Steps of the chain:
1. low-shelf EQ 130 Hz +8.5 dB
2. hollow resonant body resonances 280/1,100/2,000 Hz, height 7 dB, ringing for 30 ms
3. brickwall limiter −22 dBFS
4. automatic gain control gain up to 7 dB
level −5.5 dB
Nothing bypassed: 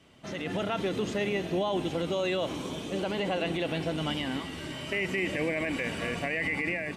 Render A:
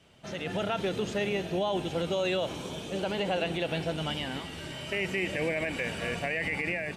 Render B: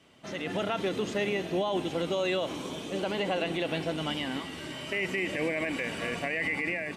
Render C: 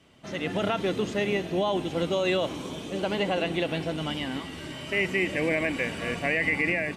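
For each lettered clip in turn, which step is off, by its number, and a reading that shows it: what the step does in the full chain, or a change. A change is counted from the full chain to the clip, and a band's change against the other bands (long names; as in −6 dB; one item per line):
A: 2, 250 Hz band −2.5 dB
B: 1, 125 Hz band −3.0 dB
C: 3, average gain reduction 2.0 dB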